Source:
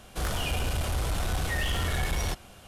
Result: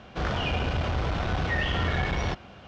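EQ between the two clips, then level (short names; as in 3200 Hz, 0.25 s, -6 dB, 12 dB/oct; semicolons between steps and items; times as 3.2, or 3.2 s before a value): HPF 170 Hz 6 dB/oct; steep low-pass 6200 Hz 36 dB/oct; tone controls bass +5 dB, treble -13 dB; +4.5 dB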